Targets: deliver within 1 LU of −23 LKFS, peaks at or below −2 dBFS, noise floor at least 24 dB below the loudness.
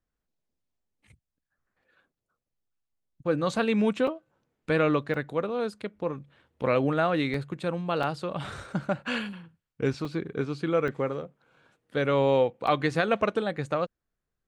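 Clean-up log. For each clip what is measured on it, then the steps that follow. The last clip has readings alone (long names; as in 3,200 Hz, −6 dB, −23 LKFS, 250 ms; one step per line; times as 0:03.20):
number of dropouts 7; longest dropout 2.8 ms; integrated loudness −28.0 LKFS; sample peak −9.0 dBFS; target loudness −23.0 LKFS
→ repair the gap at 0:04.07/0:05.14/0:07.34/0:08.03/0:10.05/0:10.88/0:12.67, 2.8 ms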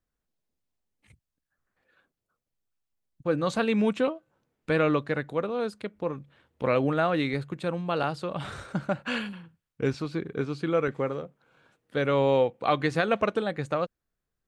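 number of dropouts 0; integrated loudness −28.0 LKFS; sample peak −9.0 dBFS; target loudness −23.0 LKFS
→ level +5 dB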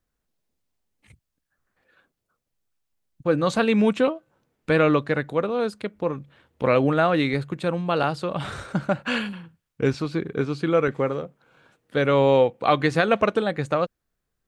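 integrated loudness −23.0 LKFS; sample peak −4.0 dBFS; background noise floor −81 dBFS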